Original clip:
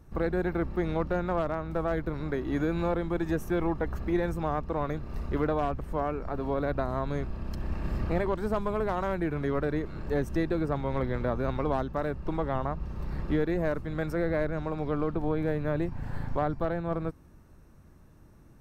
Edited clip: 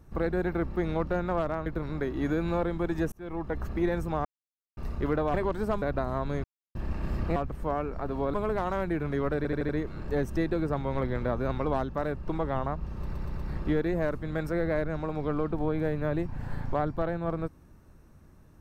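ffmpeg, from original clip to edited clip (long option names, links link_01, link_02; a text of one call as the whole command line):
ffmpeg -i in.wav -filter_complex "[0:a]asplit=18[link_01][link_02][link_03][link_04][link_05][link_06][link_07][link_08][link_09][link_10][link_11][link_12][link_13][link_14][link_15][link_16][link_17][link_18];[link_01]atrim=end=1.662[link_19];[link_02]atrim=start=1.968:end=3.43,asetpts=PTS-STARTPTS,afade=type=out:start_time=1.458:duration=0.004:curve=hsin[link_20];[link_03]atrim=start=3.43:end=4.56,asetpts=PTS-STARTPTS,afade=type=in:duration=0.49,afade=type=out:start_time=1.126:duration=0.004:curve=hsin[link_21];[link_04]atrim=start=4.56:end=5.08,asetpts=PTS-STARTPTS,volume=0[link_22];[link_05]atrim=start=5.08:end=5.652,asetpts=PTS-STARTPTS,afade=type=in:duration=0.004:curve=hsin[link_23];[link_06]atrim=start=8.168:end=8.652[link_24];[link_07]atrim=start=6.628:end=7.25,asetpts=PTS-STARTPTS,afade=type=out:start_time=0.618:duration=0.004:curve=hsin[link_25];[link_08]atrim=start=7.25:end=7.56,asetpts=PTS-STARTPTS,volume=0[link_26];[link_09]atrim=start=7.56:end=8.172,asetpts=PTS-STARTPTS,afade=type=in:duration=0.004:curve=hsin[link_27];[link_10]atrim=start=5.648:end=6.632[link_28];[link_11]atrim=start=8.648:end=9.762[link_29];[link_12]atrim=start=9.678:end=9.762[link_30];[link_13]atrim=start=9.678:end=9.762[link_31];[link_14]atrim=start=9.678:end=9.762[link_32];[link_15]atrim=start=9.678:end=13.122[link_33];[link_16]atrim=start=12.998:end=13.122[link_34];[link_17]atrim=start=12.998:end=13.122[link_35];[link_18]atrim=start=12.998[link_36];[link_20][link_21][link_22][link_23]concat=n=4:v=0:a=1[link_37];[link_19][link_37]acrossfade=duration=0.004:curve1=hsin:curve2=hsin[link_38];[link_38][link_24]acrossfade=duration=0.004:curve1=hsin:curve2=hsin[link_39];[link_25][link_26][link_27]concat=n=3:v=0:a=1[link_40];[link_39][link_40]acrossfade=duration=0.004:curve1=hsin:curve2=hsin[link_41];[link_41][link_28]acrossfade=duration=0.004:curve1=hsin:curve2=hsin[link_42];[link_42][link_29]acrossfade=duration=0.004:curve1=hsin:curve2=hsin[link_43];[link_43][link_30]acrossfade=duration=0.004:curve1=hsin:curve2=hsin[link_44];[link_44][link_31]acrossfade=duration=0.004:curve1=hsin:curve2=hsin[link_45];[link_45][link_32]acrossfade=duration=0.004:curve1=hsin:curve2=hsin[link_46];[link_46][link_33]acrossfade=duration=0.004:curve1=hsin:curve2=hsin[link_47];[link_47][link_34]acrossfade=duration=0.004:curve1=hsin:curve2=hsin[link_48];[link_48][link_35]acrossfade=duration=0.004:curve1=hsin:curve2=hsin[link_49];[link_49][link_36]acrossfade=duration=0.004:curve1=hsin:curve2=hsin" out.wav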